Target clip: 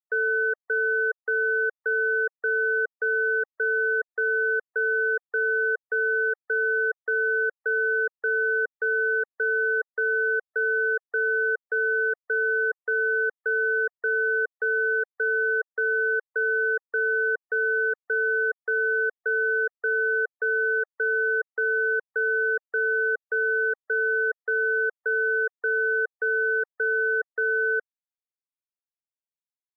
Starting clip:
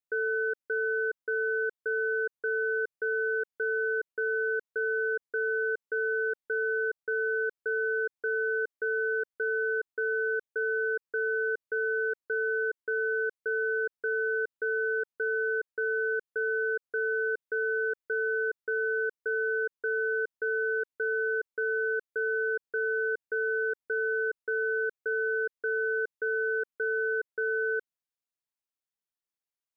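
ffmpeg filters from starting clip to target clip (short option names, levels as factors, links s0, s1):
-af "afftfilt=real='re*gte(hypot(re,im),0.00141)':imag='im*gte(hypot(re,im),0.00141)':win_size=1024:overlap=0.75,highpass=f=560:w=0.5412,highpass=f=560:w=1.3066,tiltshelf=f=970:g=4.5,volume=2.66"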